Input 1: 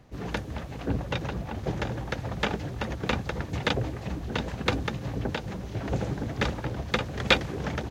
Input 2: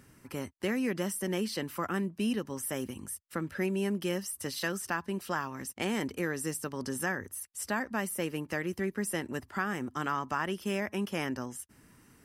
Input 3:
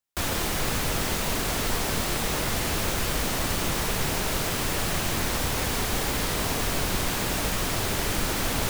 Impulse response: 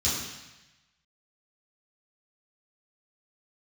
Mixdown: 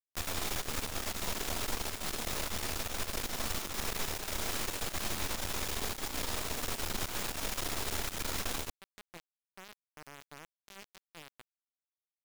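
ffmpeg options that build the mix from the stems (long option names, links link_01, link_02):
-filter_complex "[0:a]acrossover=split=310[link_01][link_02];[link_02]acompressor=threshold=-34dB:ratio=8[link_03];[link_01][link_03]amix=inputs=2:normalize=0,bandreject=frequency=750:width=16,aeval=exprs='sgn(val(0))*max(abs(val(0))-0.00668,0)':channel_layout=same,volume=-10.5dB[link_04];[1:a]lowpass=1900,equalizer=frequency=1400:width=0.96:gain=-5.5,bandreject=frequency=182.3:width_type=h:width=4,bandreject=frequency=364.6:width_type=h:width=4,bandreject=frequency=546.9:width_type=h:width=4,bandreject=frequency=729.2:width_type=h:width=4,bandreject=frequency=911.5:width_type=h:width=4,bandreject=frequency=1093.8:width_type=h:width=4,bandreject=frequency=1276.1:width_type=h:width=4,volume=-13.5dB,asplit=2[link_05][link_06];[2:a]volume=-3dB,asplit=2[link_07][link_08];[link_08]volume=-18.5dB[link_09];[link_06]apad=whole_len=348416[link_10];[link_04][link_10]sidechaincompress=threshold=-51dB:ratio=12:attack=21:release=553[link_11];[3:a]atrim=start_sample=2205[link_12];[link_09][link_12]afir=irnorm=-1:irlink=0[link_13];[link_11][link_05][link_07][link_13]amix=inputs=4:normalize=0,equalizer=frequency=120:width_type=o:width=1.7:gain=-8,acrusher=bits=4:dc=4:mix=0:aa=0.000001,alimiter=limit=-22dB:level=0:latency=1:release=138"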